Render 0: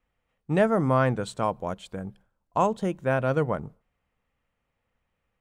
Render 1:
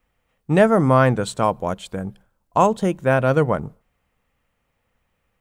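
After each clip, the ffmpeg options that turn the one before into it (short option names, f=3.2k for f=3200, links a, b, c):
-af "highshelf=f=8.5k:g=6,volume=7dB"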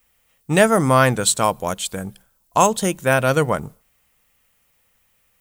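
-af "crystalizer=i=6.5:c=0,volume=-1.5dB"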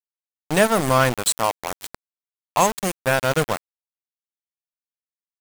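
-af "aeval=exprs='val(0)*gte(abs(val(0)),0.141)':c=same,volume=-2.5dB"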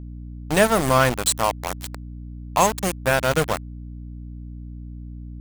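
-af "aeval=exprs='val(0)+0.02*(sin(2*PI*60*n/s)+sin(2*PI*2*60*n/s)/2+sin(2*PI*3*60*n/s)/3+sin(2*PI*4*60*n/s)/4+sin(2*PI*5*60*n/s)/5)':c=same"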